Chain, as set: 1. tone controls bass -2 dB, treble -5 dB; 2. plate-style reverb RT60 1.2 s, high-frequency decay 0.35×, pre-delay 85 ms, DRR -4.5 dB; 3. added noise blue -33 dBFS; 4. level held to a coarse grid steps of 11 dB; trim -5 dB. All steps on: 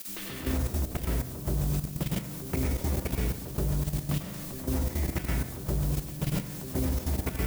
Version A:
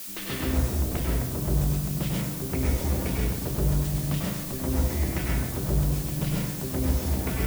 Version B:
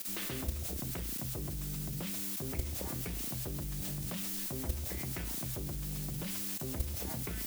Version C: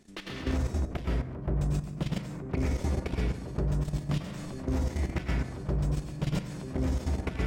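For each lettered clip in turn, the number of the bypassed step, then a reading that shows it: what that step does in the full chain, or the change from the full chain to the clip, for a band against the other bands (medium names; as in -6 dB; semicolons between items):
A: 4, loudness change +4.0 LU; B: 2, 8 kHz band +8.0 dB; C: 3, 8 kHz band -9.5 dB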